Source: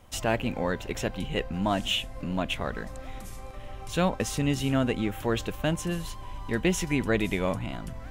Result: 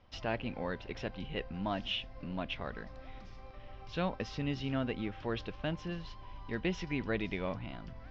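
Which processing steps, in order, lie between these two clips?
elliptic low-pass filter 5,200 Hz, stop band 50 dB
level −8 dB

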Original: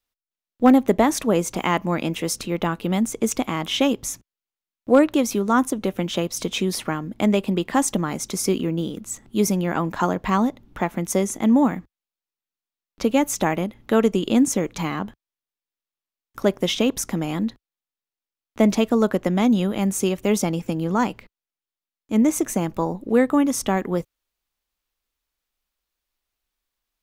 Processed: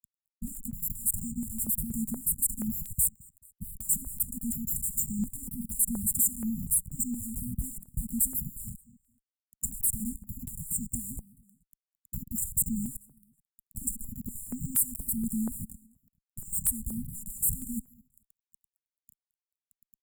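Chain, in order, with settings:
turntable start at the beginning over 0.83 s
parametric band 2,100 Hz −6.5 dB 0.67 octaves
downward compressor 16 to 1, threshold −24 dBFS, peak gain reduction 16 dB
surface crackle 13 per second −46 dBFS
fuzz pedal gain 52 dB, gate −44 dBFS
linear-phase brick-wall band-stop 170–5,200 Hz
on a send: repeating echo 293 ms, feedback 39%, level −24 dB
on the sum: wrong playback speed 33 rpm record played at 45 rpm
step-sequenced phaser 4.2 Hz 340–3,700 Hz
level −7 dB

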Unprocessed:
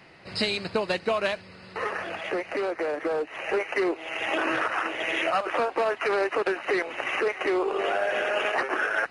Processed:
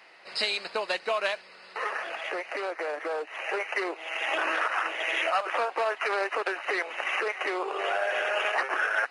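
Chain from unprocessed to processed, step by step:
high-pass filter 600 Hz 12 dB per octave

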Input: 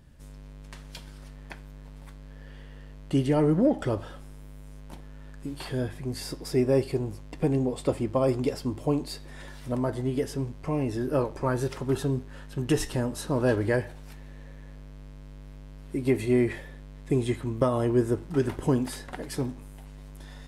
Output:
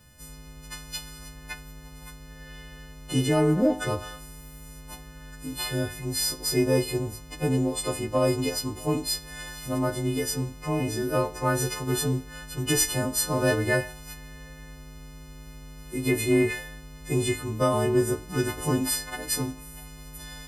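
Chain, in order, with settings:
every partial snapped to a pitch grid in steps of 3 semitones
harmonic and percussive parts rebalanced percussive −7 dB
in parallel at −11 dB: soft clipping −20.5 dBFS, distortion −14 dB

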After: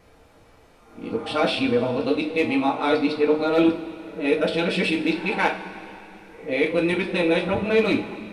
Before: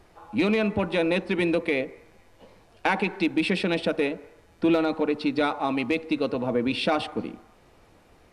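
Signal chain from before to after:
played backwards from end to start
coupled-rooms reverb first 0.29 s, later 3 s, from −18 dB, DRR −0.5 dB

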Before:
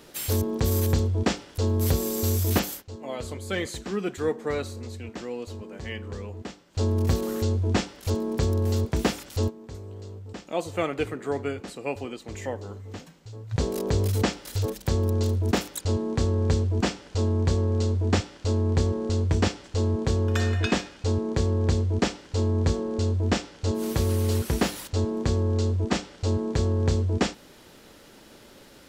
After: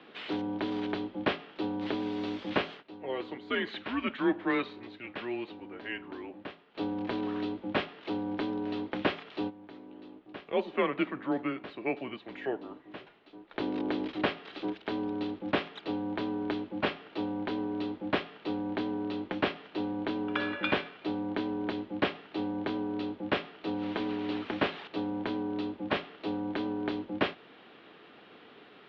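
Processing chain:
0:03.66–0:05.52: dynamic equaliser 2,600 Hz, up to +6 dB, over −49 dBFS, Q 0.71
single-sideband voice off tune −130 Hz 400–3,600 Hz

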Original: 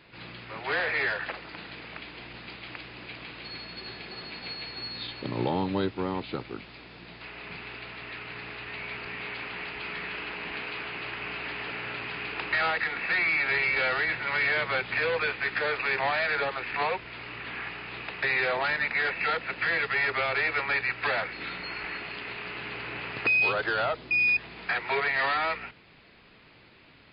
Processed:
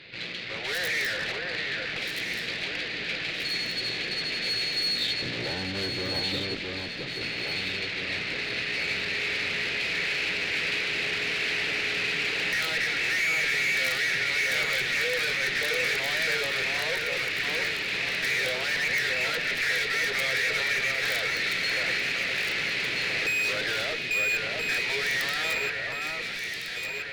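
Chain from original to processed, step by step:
tube saturation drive 40 dB, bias 0.75
octave-band graphic EQ 125/500/1,000/2,000/4,000 Hz +6/+8/−8/+10/+12 dB
wrap-around overflow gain 24 dB
mains-hum notches 60/120 Hz
delay that swaps between a low-pass and a high-pass 663 ms, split 1,900 Hz, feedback 75%, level −2.5 dB
level +3.5 dB

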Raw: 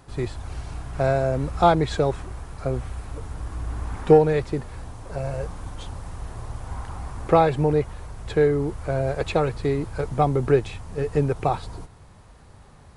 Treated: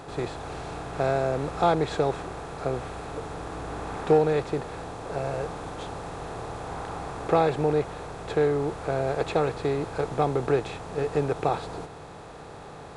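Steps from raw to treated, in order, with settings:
compressor on every frequency bin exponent 0.6
low-shelf EQ 80 Hz −11 dB
level −6.5 dB

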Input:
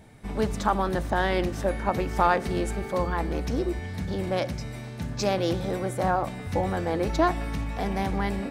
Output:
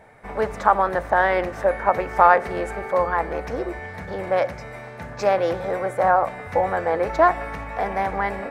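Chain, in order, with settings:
flat-topped bell 1,000 Hz +14 dB 2.7 octaves
level −6 dB

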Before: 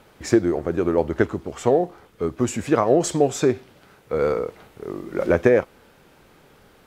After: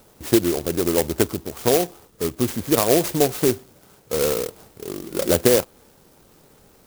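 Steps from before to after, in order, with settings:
converter with an unsteady clock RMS 0.14 ms

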